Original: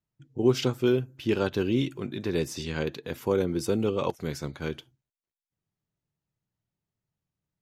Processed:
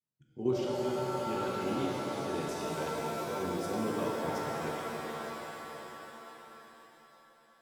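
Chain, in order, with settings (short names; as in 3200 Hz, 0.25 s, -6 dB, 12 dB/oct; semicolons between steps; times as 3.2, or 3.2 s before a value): HPF 100 Hz; level quantiser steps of 10 dB; shimmer reverb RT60 3.9 s, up +7 st, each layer -2 dB, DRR -3.5 dB; gain -9 dB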